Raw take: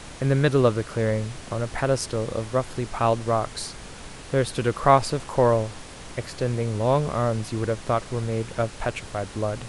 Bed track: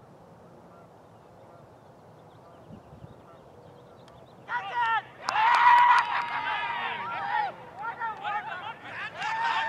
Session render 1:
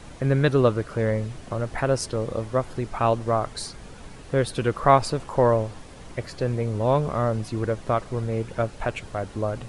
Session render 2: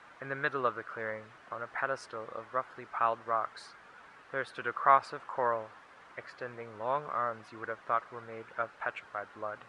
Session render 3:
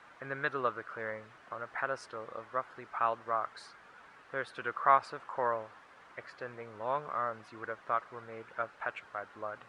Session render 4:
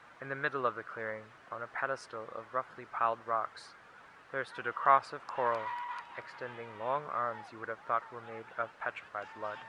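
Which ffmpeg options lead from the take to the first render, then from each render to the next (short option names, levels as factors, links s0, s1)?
-af "afftdn=nr=8:nf=-41"
-af "bandpass=f=1400:t=q:w=2.1:csg=0"
-af "volume=0.841"
-filter_complex "[1:a]volume=0.0841[s0];[0:a][s0]amix=inputs=2:normalize=0"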